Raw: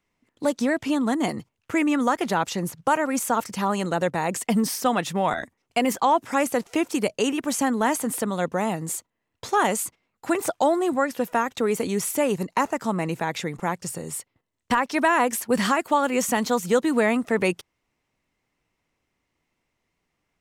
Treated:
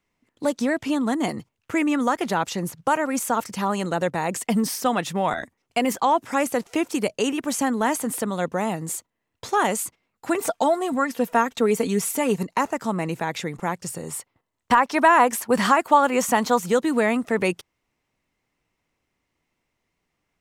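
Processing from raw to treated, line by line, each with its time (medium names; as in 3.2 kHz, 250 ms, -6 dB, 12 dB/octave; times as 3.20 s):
10.37–12.43 s: comb 4.4 ms, depth 56%
14.03–16.69 s: peaking EQ 960 Hz +6 dB 1.5 oct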